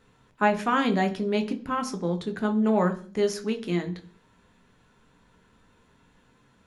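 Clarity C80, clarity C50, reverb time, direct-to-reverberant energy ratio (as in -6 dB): 19.0 dB, 15.0 dB, 0.40 s, 5.0 dB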